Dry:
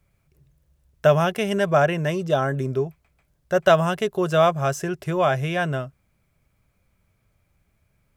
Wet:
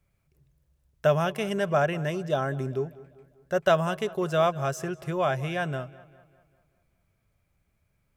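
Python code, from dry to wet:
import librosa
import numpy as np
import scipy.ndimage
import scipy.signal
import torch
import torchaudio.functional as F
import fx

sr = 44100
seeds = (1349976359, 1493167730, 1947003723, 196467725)

y = fx.echo_filtered(x, sr, ms=197, feedback_pct=50, hz=4200.0, wet_db=-19.0)
y = F.gain(torch.from_numpy(y), -5.5).numpy()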